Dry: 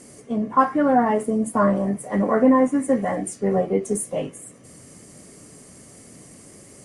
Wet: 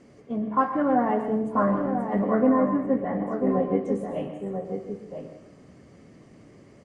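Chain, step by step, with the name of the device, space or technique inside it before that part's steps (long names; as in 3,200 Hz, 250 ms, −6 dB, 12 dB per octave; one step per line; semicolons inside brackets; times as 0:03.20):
0:02.47–0:03.49: low-pass filter 1,900 Hz 6 dB per octave
shout across a valley (high-frequency loss of the air 210 metres; slap from a distant wall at 170 metres, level −6 dB)
dense smooth reverb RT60 0.76 s, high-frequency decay 0.8×, pre-delay 105 ms, DRR 8 dB
level −4.5 dB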